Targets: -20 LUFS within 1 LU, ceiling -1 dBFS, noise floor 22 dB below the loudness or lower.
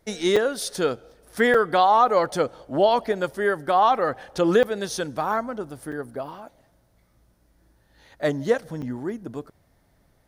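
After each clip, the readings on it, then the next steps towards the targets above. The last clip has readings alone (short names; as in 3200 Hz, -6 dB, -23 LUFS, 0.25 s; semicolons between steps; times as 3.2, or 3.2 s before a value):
dropouts 5; longest dropout 4.9 ms; loudness -23.0 LUFS; peak -7.0 dBFS; loudness target -20.0 LUFS
-> interpolate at 0.36/1.54/4.63/5.92/8.82, 4.9 ms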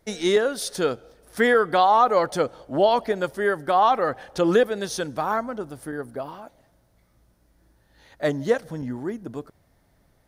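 dropouts 0; loudness -23.0 LUFS; peak -7.0 dBFS; loudness target -20.0 LUFS
-> gain +3 dB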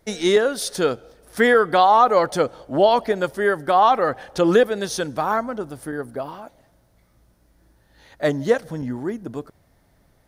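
loudness -20.0 LUFS; peak -4.0 dBFS; noise floor -60 dBFS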